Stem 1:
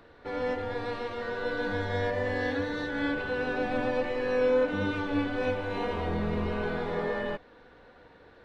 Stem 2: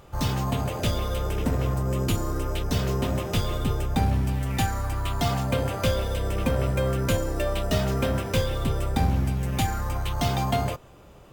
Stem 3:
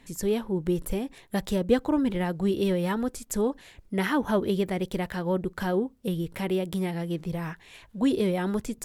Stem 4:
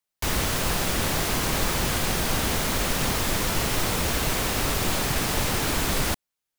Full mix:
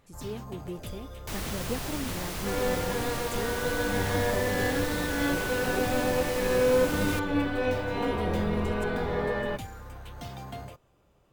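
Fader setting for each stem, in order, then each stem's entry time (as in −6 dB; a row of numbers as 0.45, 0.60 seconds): +1.5, −15.5, −12.0, −10.5 decibels; 2.20, 0.00, 0.00, 1.05 seconds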